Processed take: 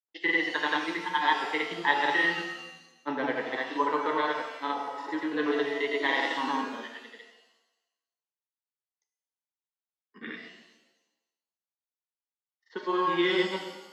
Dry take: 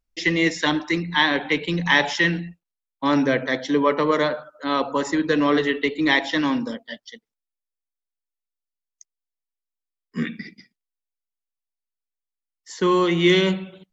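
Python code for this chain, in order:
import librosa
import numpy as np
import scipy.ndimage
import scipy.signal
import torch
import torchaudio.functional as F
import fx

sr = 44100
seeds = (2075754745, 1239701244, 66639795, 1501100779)

y = fx.granulator(x, sr, seeds[0], grain_ms=100.0, per_s=20.0, spray_ms=100.0, spread_st=0)
y = fx.cabinet(y, sr, low_hz=360.0, low_slope=12, high_hz=3600.0, hz=(600.0, 870.0, 2400.0), db=(-7, 8, -8))
y = fx.rev_shimmer(y, sr, seeds[1], rt60_s=1.0, semitones=7, shimmer_db=-8, drr_db=4.5)
y = F.gain(torch.from_numpy(y), -5.5).numpy()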